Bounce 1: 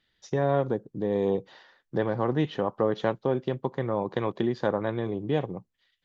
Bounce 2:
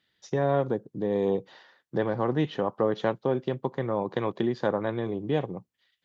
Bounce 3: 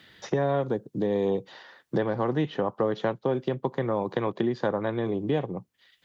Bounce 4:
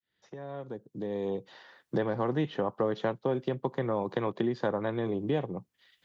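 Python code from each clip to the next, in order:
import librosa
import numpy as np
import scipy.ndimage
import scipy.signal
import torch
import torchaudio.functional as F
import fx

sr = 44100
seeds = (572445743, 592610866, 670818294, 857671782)

y1 = scipy.signal.sosfilt(scipy.signal.butter(2, 94.0, 'highpass', fs=sr, output='sos'), x)
y2 = fx.band_squash(y1, sr, depth_pct=70)
y3 = fx.fade_in_head(y2, sr, length_s=2.01)
y3 = F.gain(torch.from_numpy(y3), -3.0).numpy()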